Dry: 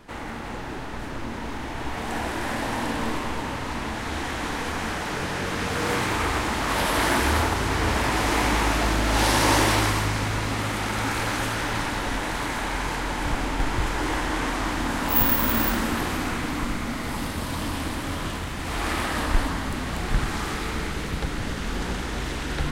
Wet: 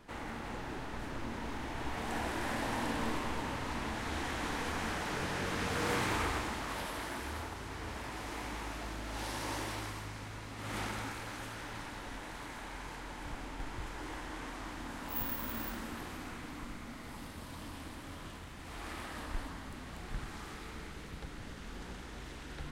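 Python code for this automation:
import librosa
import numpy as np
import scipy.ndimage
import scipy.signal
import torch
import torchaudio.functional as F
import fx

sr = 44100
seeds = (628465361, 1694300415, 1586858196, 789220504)

y = fx.gain(x, sr, db=fx.line((6.16, -8.0), (7.08, -19.0), (10.55, -19.0), (10.78, -9.5), (11.2, -17.0)))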